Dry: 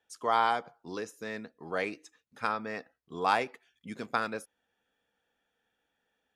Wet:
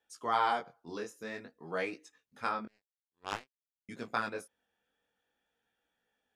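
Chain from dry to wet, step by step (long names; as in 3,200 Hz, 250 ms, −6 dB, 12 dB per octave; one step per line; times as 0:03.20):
0:02.65–0:03.89: power curve on the samples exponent 3
chorus effect 0.52 Hz, delay 16.5 ms, depth 7.6 ms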